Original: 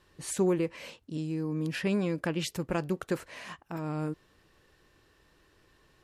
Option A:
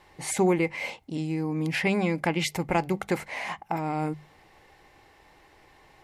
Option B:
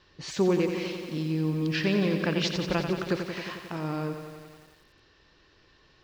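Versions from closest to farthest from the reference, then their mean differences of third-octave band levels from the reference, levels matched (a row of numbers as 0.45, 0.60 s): A, B; 2.0, 7.0 dB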